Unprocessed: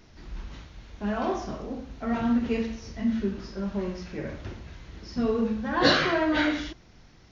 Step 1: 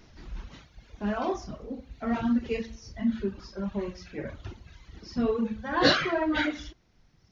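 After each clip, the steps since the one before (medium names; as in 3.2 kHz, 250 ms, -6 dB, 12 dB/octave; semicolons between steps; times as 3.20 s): reverb removal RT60 1.7 s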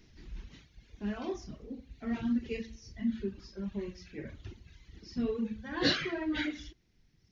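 high-order bell 870 Hz -8.5 dB; trim -5 dB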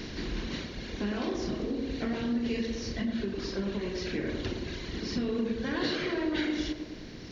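spectral levelling over time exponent 0.6; compression 6:1, threshold -36 dBFS, peak gain reduction 14 dB; band-passed feedback delay 106 ms, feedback 72%, band-pass 450 Hz, level -3.5 dB; trim +6.5 dB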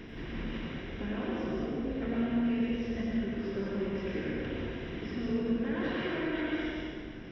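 Savitzky-Golay filter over 25 samples; plate-style reverb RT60 1.8 s, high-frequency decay 0.85×, pre-delay 80 ms, DRR -3.5 dB; trim -6 dB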